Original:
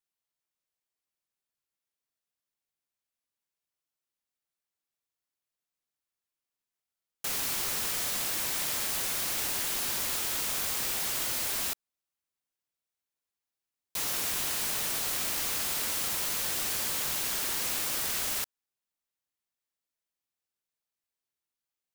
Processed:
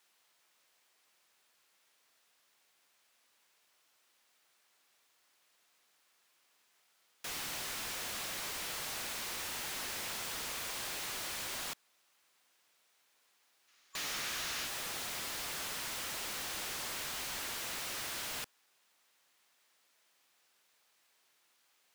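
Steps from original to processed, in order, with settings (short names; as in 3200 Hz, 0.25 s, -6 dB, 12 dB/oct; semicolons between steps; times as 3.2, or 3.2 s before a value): wavefolder -31 dBFS; spectral gain 13.68–14.66, 1100–7100 Hz +6 dB; overdrive pedal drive 35 dB, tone 4100 Hz, clips at -25 dBFS; gain -5.5 dB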